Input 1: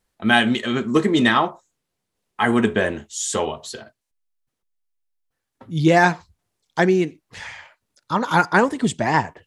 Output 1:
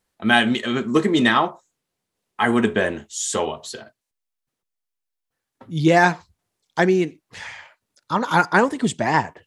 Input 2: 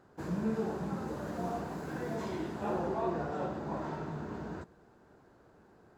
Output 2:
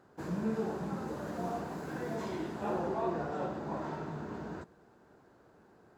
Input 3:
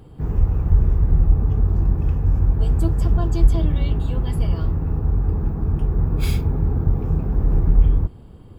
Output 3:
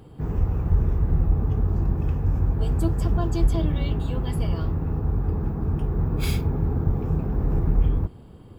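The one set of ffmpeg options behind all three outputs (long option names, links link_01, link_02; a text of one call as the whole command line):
ffmpeg -i in.wav -af "lowshelf=frequency=66:gain=-9" out.wav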